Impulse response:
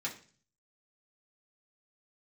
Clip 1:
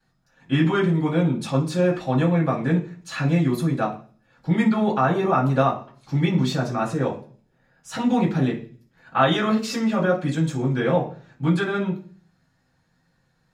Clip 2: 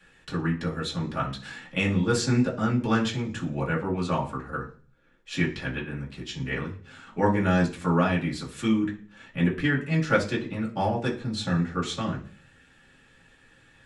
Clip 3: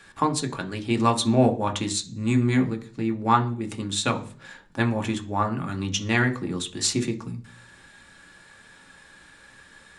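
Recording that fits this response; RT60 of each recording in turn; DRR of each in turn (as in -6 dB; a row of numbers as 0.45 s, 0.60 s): 2; 0.40 s, 0.40 s, 0.40 s; -14.5 dB, -5.0 dB, 4.0 dB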